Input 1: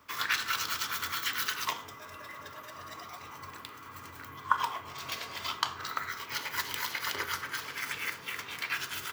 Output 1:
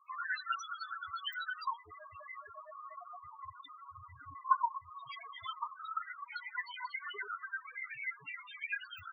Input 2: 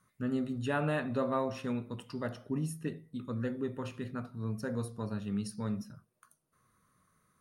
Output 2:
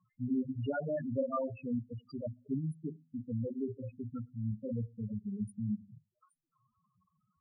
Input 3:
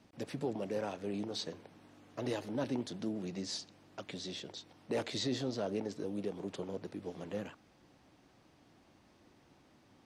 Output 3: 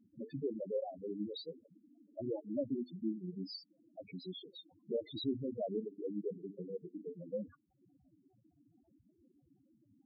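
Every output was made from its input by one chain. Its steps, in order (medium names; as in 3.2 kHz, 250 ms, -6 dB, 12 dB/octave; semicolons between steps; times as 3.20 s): hum notches 50/100/150/200/250/300/350/400/450 Hz; loudest bins only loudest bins 4; reverb removal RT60 0.64 s; trim +2.5 dB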